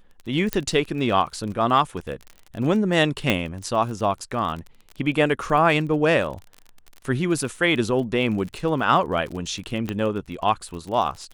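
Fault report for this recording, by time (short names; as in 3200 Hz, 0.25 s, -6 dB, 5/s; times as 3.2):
crackle 38/s -31 dBFS
0.53 pop -6 dBFS
3.3 pop -6 dBFS
9.89 pop -14 dBFS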